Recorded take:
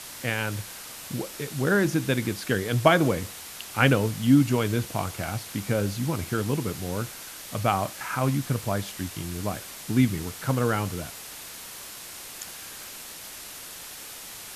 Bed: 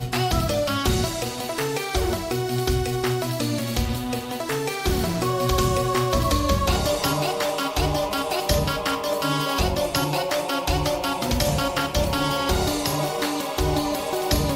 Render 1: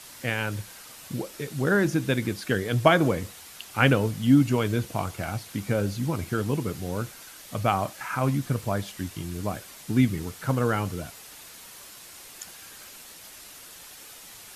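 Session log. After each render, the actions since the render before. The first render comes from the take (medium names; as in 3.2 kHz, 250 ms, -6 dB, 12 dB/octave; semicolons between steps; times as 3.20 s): noise reduction 6 dB, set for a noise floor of -41 dBFS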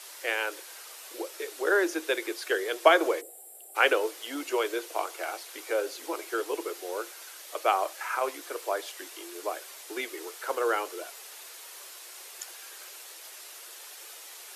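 3.21–3.76 s: time-frequency box 820–7200 Hz -23 dB; steep high-pass 340 Hz 72 dB/octave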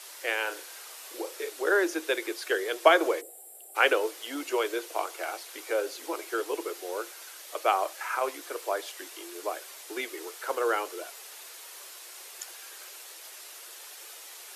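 0.42–1.50 s: flutter echo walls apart 6.2 m, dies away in 0.25 s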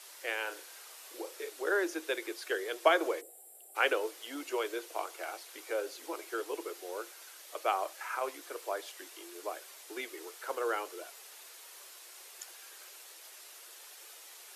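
trim -6 dB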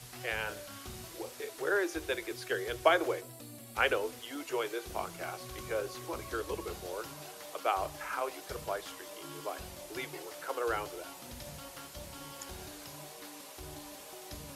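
add bed -25 dB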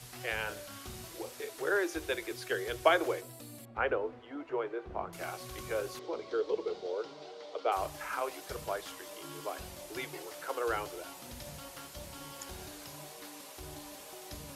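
3.65–5.13 s: low-pass 1.4 kHz; 5.99–7.72 s: cabinet simulation 260–4700 Hz, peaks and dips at 450 Hz +9 dB, 1.1 kHz -5 dB, 1.7 kHz -8 dB, 2.6 kHz -7 dB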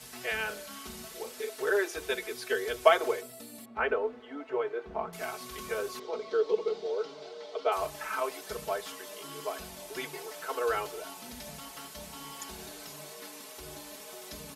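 high-pass 92 Hz 6 dB/octave; comb 4.6 ms, depth 98%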